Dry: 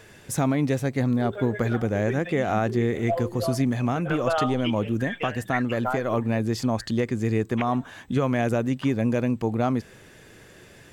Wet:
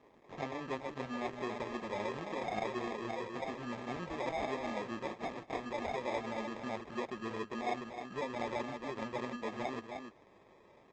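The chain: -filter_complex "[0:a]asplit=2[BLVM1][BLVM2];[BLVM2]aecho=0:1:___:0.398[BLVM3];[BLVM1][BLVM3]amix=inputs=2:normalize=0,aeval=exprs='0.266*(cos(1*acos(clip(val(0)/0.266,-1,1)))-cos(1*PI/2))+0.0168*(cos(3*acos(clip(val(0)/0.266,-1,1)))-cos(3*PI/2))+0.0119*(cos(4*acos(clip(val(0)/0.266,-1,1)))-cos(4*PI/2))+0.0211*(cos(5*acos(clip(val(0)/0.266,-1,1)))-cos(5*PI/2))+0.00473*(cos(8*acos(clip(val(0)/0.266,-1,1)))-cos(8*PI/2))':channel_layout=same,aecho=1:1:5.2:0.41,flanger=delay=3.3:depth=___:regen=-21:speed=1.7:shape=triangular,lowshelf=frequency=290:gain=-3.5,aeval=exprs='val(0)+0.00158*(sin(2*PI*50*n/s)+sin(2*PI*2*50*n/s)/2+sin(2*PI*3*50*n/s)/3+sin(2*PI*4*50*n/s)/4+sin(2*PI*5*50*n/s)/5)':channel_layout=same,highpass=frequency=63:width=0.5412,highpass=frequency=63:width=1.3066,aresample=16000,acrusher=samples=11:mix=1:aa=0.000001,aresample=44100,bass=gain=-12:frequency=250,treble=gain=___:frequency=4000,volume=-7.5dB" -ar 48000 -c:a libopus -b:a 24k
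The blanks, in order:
295, 7.7, -15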